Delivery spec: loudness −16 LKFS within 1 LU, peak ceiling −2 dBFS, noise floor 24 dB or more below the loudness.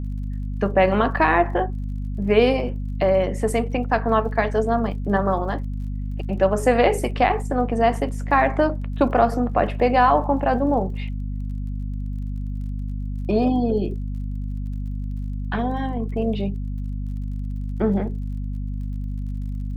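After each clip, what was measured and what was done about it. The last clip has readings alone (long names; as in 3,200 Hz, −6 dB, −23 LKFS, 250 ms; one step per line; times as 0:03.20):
crackle rate 35 per second; mains hum 50 Hz; hum harmonics up to 250 Hz; level of the hum −25 dBFS; integrated loudness −23.0 LKFS; sample peak −4.0 dBFS; target loudness −16.0 LKFS
→ click removal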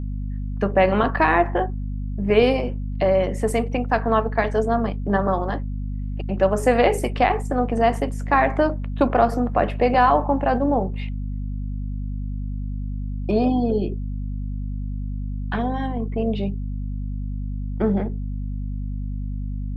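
crackle rate 0 per second; mains hum 50 Hz; hum harmonics up to 250 Hz; level of the hum −25 dBFS
→ mains-hum notches 50/100/150/200/250 Hz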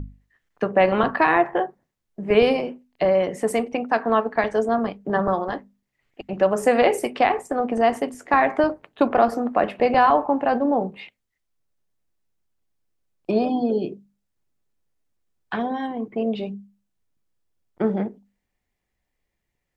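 mains hum none found; integrated loudness −22.0 LKFS; sample peak −4.5 dBFS; target loudness −16.0 LKFS
→ level +6 dB
brickwall limiter −2 dBFS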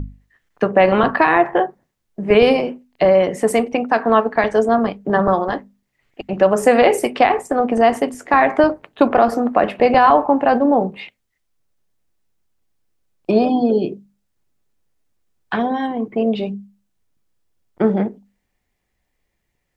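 integrated loudness −16.5 LKFS; sample peak −2.0 dBFS; background noise floor −73 dBFS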